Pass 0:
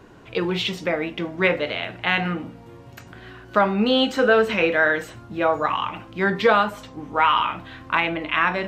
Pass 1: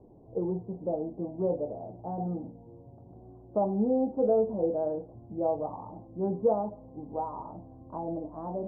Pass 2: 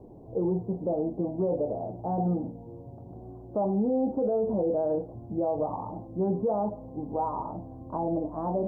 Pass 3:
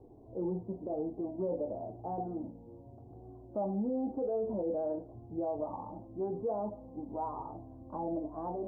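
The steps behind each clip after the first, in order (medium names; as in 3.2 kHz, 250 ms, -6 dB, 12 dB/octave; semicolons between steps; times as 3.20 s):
steep low-pass 820 Hz 48 dB/octave; trim -6.5 dB
peak limiter -26.5 dBFS, peak gain reduction 11.5 dB; trim +6.5 dB
flange 0.94 Hz, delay 2.4 ms, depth 1.3 ms, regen -42%; trim -3.5 dB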